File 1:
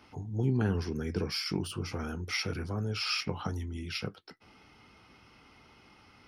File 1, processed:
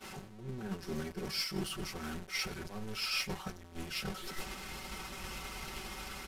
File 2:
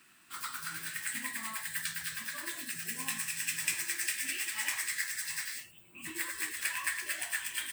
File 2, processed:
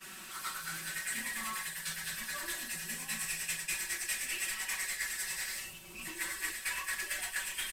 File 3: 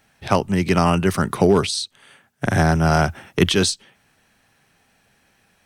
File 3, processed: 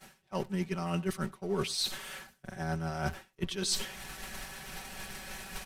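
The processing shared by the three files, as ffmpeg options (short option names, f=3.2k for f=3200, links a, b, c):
-af "aeval=exprs='val(0)+0.5*0.0376*sgn(val(0))':c=same,areverse,acompressor=threshold=-28dB:ratio=12,areverse,aecho=1:1:5.3:0.88,aresample=32000,aresample=44100,aecho=1:1:98:0.119,asubboost=boost=3.5:cutoff=80,anlmdn=0.00251,agate=range=-33dB:threshold=-22dB:ratio=3:detection=peak"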